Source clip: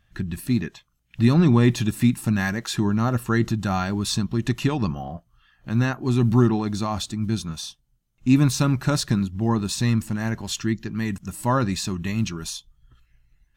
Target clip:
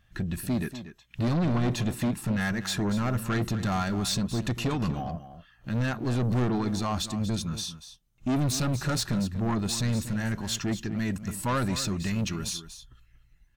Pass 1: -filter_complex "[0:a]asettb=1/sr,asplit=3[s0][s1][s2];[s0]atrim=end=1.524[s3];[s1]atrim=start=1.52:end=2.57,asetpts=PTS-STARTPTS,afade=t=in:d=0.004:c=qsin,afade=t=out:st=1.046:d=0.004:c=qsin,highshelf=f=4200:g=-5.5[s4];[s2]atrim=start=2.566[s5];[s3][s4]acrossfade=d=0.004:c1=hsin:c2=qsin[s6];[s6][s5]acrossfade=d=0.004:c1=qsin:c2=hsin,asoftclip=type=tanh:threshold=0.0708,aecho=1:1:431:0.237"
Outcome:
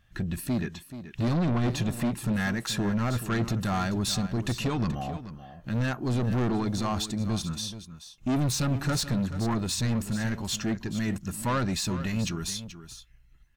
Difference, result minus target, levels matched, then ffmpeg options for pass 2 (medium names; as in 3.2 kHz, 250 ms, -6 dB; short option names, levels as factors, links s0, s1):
echo 192 ms late
-filter_complex "[0:a]asettb=1/sr,asplit=3[s0][s1][s2];[s0]atrim=end=1.524[s3];[s1]atrim=start=1.52:end=2.57,asetpts=PTS-STARTPTS,afade=t=in:d=0.004:c=qsin,afade=t=out:st=1.046:d=0.004:c=qsin,highshelf=f=4200:g=-5.5[s4];[s2]atrim=start=2.566[s5];[s3][s4]acrossfade=d=0.004:c1=hsin:c2=qsin[s6];[s6][s5]acrossfade=d=0.004:c1=qsin:c2=hsin,asoftclip=type=tanh:threshold=0.0708,aecho=1:1:239:0.237"